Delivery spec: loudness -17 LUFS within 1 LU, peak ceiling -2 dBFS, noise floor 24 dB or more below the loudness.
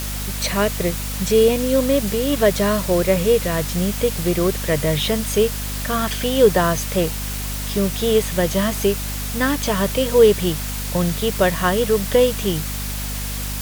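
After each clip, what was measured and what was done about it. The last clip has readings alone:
hum 50 Hz; harmonics up to 250 Hz; hum level -25 dBFS; noise floor -26 dBFS; noise floor target -44 dBFS; loudness -19.5 LUFS; peak -1.5 dBFS; loudness target -17.0 LUFS
-> de-hum 50 Hz, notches 5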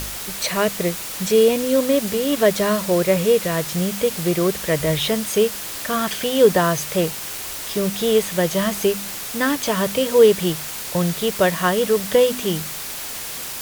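hum none; noise floor -31 dBFS; noise floor target -44 dBFS
-> denoiser 13 dB, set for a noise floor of -31 dBFS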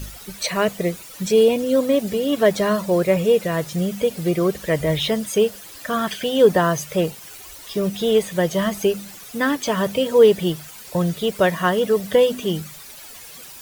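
noise floor -40 dBFS; noise floor target -44 dBFS
-> denoiser 6 dB, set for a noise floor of -40 dBFS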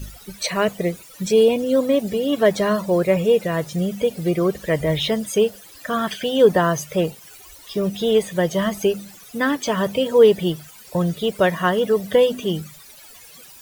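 noise floor -45 dBFS; loudness -20.0 LUFS; peak -3.0 dBFS; loudness target -17.0 LUFS
-> gain +3 dB; limiter -2 dBFS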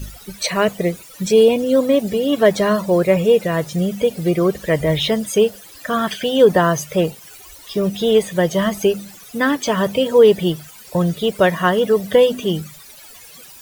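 loudness -17.5 LUFS; peak -2.0 dBFS; noise floor -42 dBFS

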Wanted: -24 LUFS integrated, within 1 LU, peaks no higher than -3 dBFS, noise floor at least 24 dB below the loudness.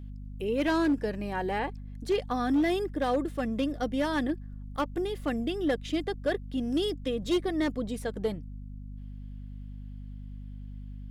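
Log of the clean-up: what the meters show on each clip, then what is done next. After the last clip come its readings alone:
clipped 0.7%; flat tops at -20.5 dBFS; hum 50 Hz; harmonics up to 250 Hz; hum level -38 dBFS; loudness -30.0 LUFS; peak -20.5 dBFS; loudness target -24.0 LUFS
-> clip repair -20.5 dBFS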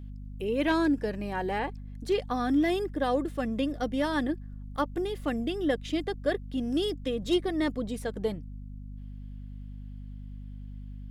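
clipped 0.0%; hum 50 Hz; harmonics up to 250 Hz; hum level -38 dBFS
-> de-hum 50 Hz, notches 5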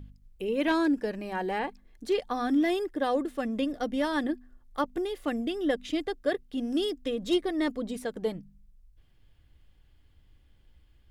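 hum none; loudness -30.0 LUFS; peak -13.0 dBFS; loudness target -24.0 LUFS
-> gain +6 dB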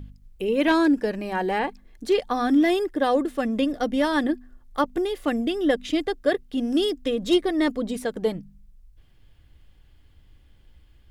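loudness -24.0 LUFS; peak -7.0 dBFS; noise floor -55 dBFS

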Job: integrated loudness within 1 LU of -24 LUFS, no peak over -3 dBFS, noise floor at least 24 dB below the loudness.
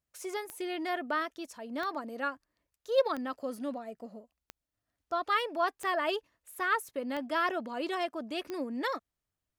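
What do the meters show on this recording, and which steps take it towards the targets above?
clicks 7; loudness -33.5 LUFS; peak -15.0 dBFS; loudness target -24.0 LUFS
-> de-click; gain +9.5 dB

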